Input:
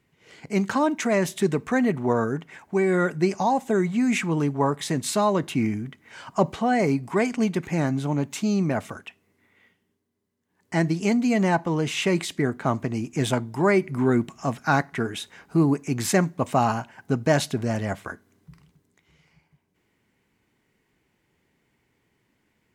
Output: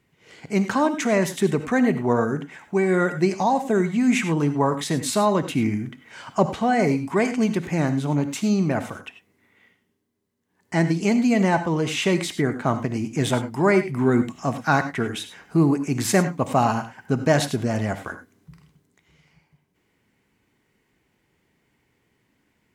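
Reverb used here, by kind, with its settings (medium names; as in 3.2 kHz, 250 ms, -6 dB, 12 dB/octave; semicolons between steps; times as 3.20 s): gated-style reverb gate 120 ms rising, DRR 10 dB; trim +1.5 dB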